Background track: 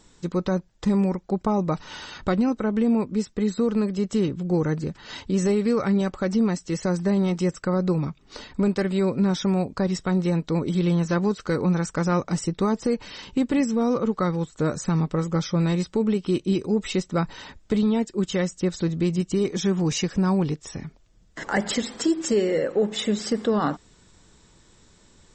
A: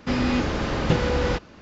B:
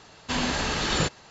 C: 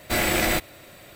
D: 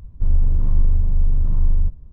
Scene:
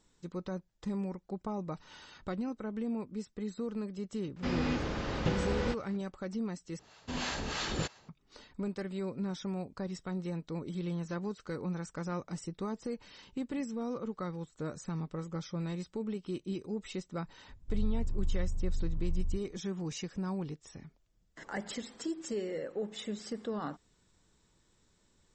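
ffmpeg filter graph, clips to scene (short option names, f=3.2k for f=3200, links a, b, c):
-filter_complex "[0:a]volume=-14.5dB[a];[2:a]acrossover=split=590[b][c];[b]aeval=exprs='val(0)*(1-0.7/2+0.7/2*cos(2*PI*3.1*n/s))':c=same[d];[c]aeval=exprs='val(0)*(1-0.7/2-0.7/2*cos(2*PI*3.1*n/s))':c=same[e];[d][e]amix=inputs=2:normalize=0[f];[a]asplit=2[g][h];[g]atrim=end=6.794[i];[f]atrim=end=1.3,asetpts=PTS-STARTPTS,volume=-6dB[j];[h]atrim=start=8.086[k];[1:a]atrim=end=1.61,asetpts=PTS-STARTPTS,volume=-10dB,afade=t=in:d=0.004:c=hsin,afade=t=out:st=1.606:d=0.004:c=hsin,adelay=4360[l];[4:a]atrim=end=2.12,asetpts=PTS-STARTPTS,volume=-16.5dB,afade=t=in:d=0.004:c=hsin,afade=t=out:st=2.116:d=0.004:c=hsin,adelay=770868S[m];[i][j]acrossfade=d=0.004:c1=hsin:c2=hsin[n];[n][k]acrossfade=d=0.004:c1=hsin:c2=hsin[o];[o][l][m]amix=inputs=3:normalize=0"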